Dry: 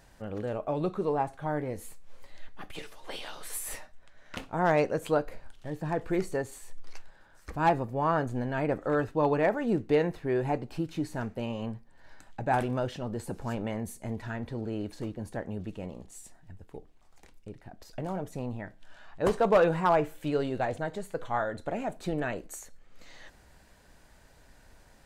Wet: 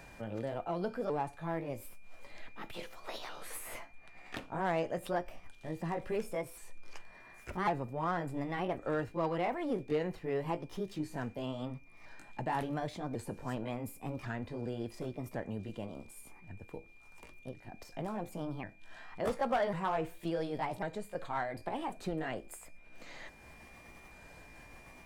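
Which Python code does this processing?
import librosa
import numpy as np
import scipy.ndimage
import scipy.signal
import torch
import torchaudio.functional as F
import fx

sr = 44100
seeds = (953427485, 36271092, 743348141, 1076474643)

p1 = fx.pitch_ramps(x, sr, semitones=4.0, every_ms=1096)
p2 = p1 + 10.0 ** (-62.0 / 20.0) * np.sin(2.0 * np.pi * 2400.0 * np.arange(len(p1)) / sr)
p3 = 10.0 ** (-28.0 / 20.0) * np.tanh(p2 / 10.0 ** (-28.0 / 20.0))
p4 = p2 + (p3 * librosa.db_to_amplitude(-5.5))
p5 = fx.band_squash(p4, sr, depth_pct=40)
y = p5 * librosa.db_to_amplitude(-7.5)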